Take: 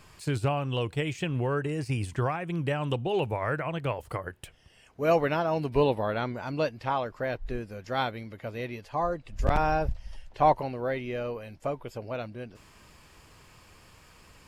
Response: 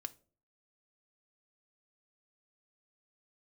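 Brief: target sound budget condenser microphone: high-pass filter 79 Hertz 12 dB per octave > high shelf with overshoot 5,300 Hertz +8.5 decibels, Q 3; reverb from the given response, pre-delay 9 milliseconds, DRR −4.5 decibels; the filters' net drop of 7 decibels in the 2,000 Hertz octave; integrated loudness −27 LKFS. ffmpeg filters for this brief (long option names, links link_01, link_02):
-filter_complex "[0:a]equalizer=frequency=2000:width_type=o:gain=-8.5,asplit=2[link_01][link_02];[1:a]atrim=start_sample=2205,adelay=9[link_03];[link_02][link_03]afir=irnorm=-1:irlink=0,volume=7.5dB[link_04];[link_01][link_04]amix=inputs=2:normalize=0,highpass=79,highshelf=frequency=5300:width_type=q:width=3:gain=8.5,volume=-1.5dB"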